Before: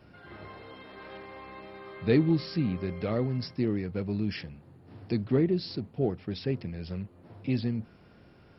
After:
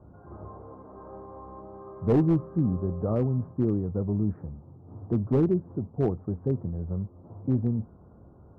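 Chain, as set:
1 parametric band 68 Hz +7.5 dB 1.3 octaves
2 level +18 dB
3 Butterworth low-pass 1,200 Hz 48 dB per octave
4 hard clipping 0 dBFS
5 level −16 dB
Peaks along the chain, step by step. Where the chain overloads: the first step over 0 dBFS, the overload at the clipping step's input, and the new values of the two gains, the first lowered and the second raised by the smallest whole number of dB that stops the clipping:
−10.5, +7.5, +6.5, 0.0, −16.0 dBFS
step 2, 6.5 dB
step 2 +11 dB, step 5 −9 dB

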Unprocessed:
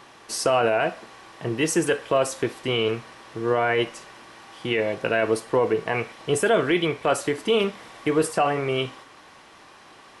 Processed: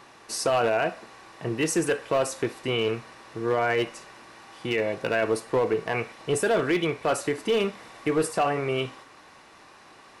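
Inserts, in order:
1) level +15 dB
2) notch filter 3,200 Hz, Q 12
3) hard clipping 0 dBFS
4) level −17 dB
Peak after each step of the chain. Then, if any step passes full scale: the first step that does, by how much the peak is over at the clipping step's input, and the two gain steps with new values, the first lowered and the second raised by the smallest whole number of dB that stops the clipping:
+6.5, +6.0, 0.0, −17.0 dBFS
step 1, 6.0 dB
step 1 +9 dB, step 4 −11 dB

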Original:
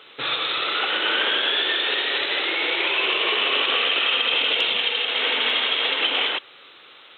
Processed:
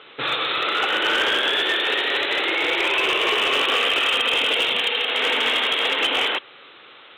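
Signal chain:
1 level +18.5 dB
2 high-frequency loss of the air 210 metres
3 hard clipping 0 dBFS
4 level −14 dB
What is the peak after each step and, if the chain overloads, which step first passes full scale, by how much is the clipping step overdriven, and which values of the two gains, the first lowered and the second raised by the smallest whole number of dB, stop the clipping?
+8.5, +6.0, 0.0, −14.0 dBFS
step 1, 6.0 dB
step 1 +12.5 dB, step 4 −8 dB

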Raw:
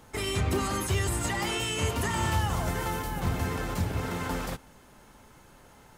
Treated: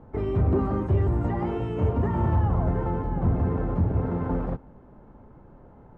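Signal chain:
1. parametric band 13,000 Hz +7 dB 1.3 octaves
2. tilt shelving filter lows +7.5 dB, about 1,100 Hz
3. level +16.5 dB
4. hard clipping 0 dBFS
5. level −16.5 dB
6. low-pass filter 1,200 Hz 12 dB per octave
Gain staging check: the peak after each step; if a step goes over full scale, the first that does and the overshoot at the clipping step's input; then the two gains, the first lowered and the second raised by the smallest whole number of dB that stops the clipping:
−16.0, −10.5, +6.0, 0.0, −16.5, −16.0 dBFS
step 3, 6.0 dB
step 3 +10.5 dB, step 5 −10.5 dB

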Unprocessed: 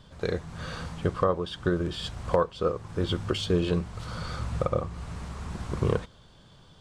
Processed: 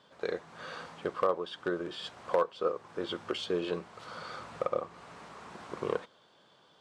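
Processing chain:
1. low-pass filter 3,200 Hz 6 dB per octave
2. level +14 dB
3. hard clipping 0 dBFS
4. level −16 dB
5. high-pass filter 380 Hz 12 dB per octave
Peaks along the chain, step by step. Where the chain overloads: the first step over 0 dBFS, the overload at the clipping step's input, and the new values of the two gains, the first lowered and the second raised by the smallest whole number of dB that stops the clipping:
−10.5, +3.5, 0.0, −16.0, −13.5 dBFS
step 2, 3.5 dB
step 2 +10 dB, step 4 −12 dB

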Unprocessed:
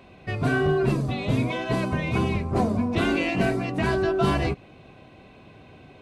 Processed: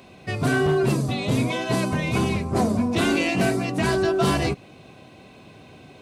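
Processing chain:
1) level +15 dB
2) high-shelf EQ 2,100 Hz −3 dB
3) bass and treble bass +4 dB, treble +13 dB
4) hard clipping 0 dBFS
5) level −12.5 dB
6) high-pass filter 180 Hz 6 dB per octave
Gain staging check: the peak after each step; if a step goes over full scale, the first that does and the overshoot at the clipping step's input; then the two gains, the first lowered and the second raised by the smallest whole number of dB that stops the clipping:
+5.5, +5.5, +7.5, 0.0, −12.5, −10.0 dBFS
step 1, 7.5 dB
step 1 +7 dB, step 5 −4.5 dB

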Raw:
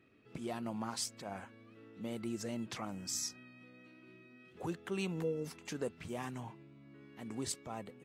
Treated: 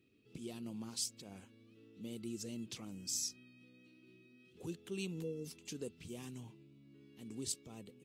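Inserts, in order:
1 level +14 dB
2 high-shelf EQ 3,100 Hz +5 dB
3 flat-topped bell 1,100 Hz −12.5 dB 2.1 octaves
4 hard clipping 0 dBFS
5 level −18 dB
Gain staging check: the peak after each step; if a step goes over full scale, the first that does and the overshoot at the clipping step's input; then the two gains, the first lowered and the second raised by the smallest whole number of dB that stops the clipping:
−9.0, −5.5, −4.5, −4.5, −22.5 dBFS
no step passes full scale

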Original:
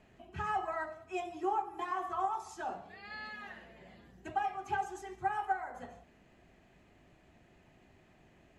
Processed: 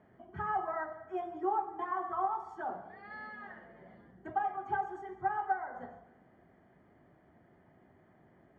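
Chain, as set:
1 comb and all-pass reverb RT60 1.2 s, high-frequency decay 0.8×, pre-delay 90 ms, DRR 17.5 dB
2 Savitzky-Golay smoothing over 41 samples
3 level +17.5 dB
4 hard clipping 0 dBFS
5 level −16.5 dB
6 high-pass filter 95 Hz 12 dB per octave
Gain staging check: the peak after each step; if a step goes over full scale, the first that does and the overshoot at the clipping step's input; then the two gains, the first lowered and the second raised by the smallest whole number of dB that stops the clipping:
−20.5, −20.5, −3.0, −3.0, −19.5, −19.5 dBFS
no step passes full scale

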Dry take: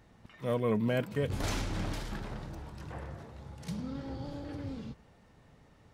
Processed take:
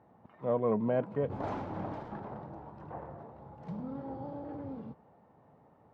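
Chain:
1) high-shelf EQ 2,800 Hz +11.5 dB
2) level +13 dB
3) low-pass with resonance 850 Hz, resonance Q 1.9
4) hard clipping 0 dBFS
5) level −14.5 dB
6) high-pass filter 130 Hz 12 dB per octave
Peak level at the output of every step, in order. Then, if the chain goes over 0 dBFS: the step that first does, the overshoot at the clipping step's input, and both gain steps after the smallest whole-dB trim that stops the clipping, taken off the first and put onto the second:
−17.5, −4.5, −3.5, −3.5, −18.0, −18.0 dBFS
no step passes full scale

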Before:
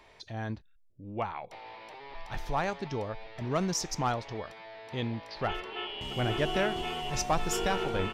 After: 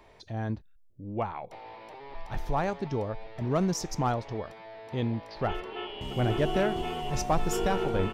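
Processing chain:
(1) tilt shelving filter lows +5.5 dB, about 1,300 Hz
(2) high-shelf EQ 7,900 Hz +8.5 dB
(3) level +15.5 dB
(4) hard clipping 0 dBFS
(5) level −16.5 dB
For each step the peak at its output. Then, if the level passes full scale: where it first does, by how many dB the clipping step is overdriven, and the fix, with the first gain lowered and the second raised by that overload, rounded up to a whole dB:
−12.0, −12.0, +3.5, 0.0, −16.5 dBFS
step 3, 3.5 dB
step 3 +11.5 dB, step 5 −12.5 dB

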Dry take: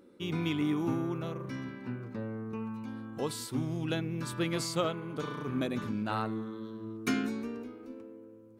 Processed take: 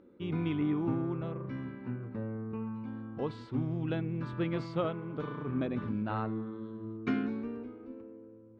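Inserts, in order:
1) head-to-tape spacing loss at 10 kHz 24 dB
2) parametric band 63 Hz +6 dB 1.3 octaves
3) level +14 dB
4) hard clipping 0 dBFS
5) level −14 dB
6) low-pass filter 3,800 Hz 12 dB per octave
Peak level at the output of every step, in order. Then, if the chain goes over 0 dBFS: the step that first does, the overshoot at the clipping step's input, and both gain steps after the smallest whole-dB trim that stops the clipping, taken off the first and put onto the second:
−19.5, −19.5, −5.5, −5.5, −19.5, −19.5 dBFS
no step passes full scale

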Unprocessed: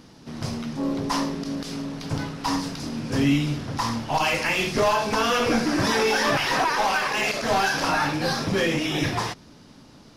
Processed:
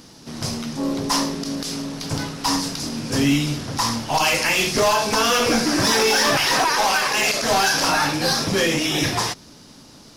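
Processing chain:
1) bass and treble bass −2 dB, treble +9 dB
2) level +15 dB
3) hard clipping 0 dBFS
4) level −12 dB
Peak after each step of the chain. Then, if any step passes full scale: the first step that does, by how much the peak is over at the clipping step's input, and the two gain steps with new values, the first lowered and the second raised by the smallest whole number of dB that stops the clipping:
−10.0, +5.0, 0.0, −12.0 dBFS
step 2, 5.0 dB
step 2 +10 dB, step 4 −7 dB

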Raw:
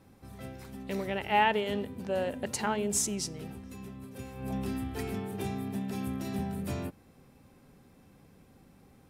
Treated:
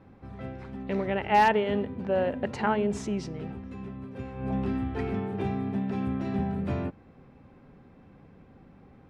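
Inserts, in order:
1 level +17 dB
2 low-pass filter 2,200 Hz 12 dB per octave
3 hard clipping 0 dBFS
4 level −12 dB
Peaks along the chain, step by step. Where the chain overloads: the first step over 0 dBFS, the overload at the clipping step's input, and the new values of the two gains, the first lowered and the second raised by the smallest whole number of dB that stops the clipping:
+5.0, +4.0, 0.0, −12.0 dBFS
step 1, 4.0 dB
step 1 +13 dB, step 4 −8 dB

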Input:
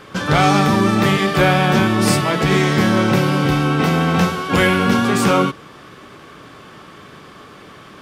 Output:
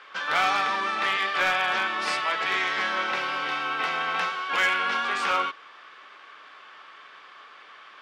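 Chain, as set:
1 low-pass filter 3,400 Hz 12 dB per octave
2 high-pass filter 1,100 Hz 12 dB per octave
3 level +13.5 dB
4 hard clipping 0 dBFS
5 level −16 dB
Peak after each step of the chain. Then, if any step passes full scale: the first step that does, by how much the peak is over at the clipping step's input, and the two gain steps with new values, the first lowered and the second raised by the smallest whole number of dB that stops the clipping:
−3.5, −6.5, +7.0, 0.0, −16.0 dBFS
step 3, 7.0 dB
step 3 +6.5 dB, step 5 −9 dB

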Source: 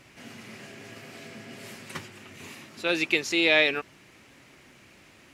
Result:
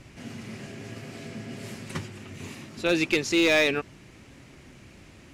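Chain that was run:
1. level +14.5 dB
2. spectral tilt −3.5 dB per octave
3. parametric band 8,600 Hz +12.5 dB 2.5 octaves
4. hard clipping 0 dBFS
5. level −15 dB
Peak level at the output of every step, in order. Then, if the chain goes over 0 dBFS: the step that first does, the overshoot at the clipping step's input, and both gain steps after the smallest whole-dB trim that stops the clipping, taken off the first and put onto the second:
+6.0, +5.5, +8.5, 0.0, −15.0 dBFS
step 1, 8.5 dB
step 1 +5.5 dB, step 5 −6 dB

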